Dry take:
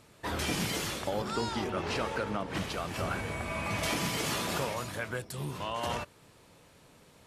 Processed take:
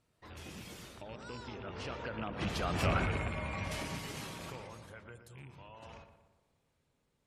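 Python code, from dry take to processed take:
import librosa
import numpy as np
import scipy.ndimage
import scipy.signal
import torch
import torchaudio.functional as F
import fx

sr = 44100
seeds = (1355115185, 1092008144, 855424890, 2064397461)

p1 = fx.rattle_buzz(x, sr, strikes_db=-35.0, level_db=-26.0)
p2 = fx.doppler_pass(p1, sr, speed_mps=19, closest_m=4.5, pass_at_s=2.84)
p3 = fx.spec_gate(p2, sr, threshold_db=-30, keep='strong')
p4 = fx.low_shelf(p3, sr, hz=110.0, db=8.0)
p5 = np.clip(10.0 ** (33.5 / 20.0) * p4, -1.0, 1.0) / 10.0 ** (33.5 / 20.0)
p6 = p4 + F.gain(torch.from_numpy(p5), -10.0).numpy()
y = fx.echo_filtered(p6, sr, ms=119, feedback_pct=53, hz=2400.0, wet_db=-9.5)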